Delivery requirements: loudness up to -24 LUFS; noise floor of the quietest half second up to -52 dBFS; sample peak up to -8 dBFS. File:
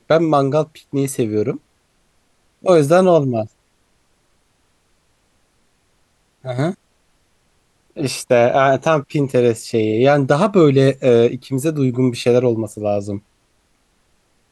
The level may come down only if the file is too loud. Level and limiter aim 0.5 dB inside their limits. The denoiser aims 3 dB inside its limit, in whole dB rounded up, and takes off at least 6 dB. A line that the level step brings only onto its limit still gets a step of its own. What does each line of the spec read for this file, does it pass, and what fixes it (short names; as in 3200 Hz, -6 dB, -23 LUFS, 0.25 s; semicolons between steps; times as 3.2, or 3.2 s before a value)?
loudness -16.5 LUFS: fail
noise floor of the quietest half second -61 dBFS: OK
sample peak -2.5 dBFS: fail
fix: gain -8 dB